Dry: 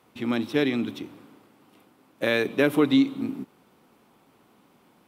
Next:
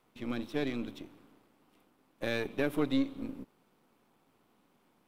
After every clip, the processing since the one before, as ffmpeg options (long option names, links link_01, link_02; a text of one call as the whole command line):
ffmpeg -i in.wav -af "aeval=exprs='if(lt(val(0),0),0.447*val(0),val(0))':channel_layout=same,volume=-7.5dB" out.wav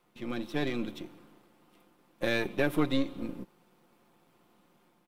ffmpeg -i in.wav -af "aecho=1:1:5.7:0.43,dynaudnorm=framelen=320:gausssize=3:maxgain=3.5dB" out.wav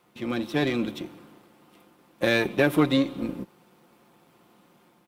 ffmpeg -i in.wav -af "highpass=54,volume=7dB" out.wav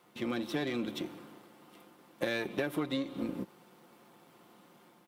ffmpeg -i in.wav -af "lowshelf=frequency=93:gain=-10.5,bandreject=frequency=2500:width=25,acompressor=threshold=-31dB:ratio=5" out.wav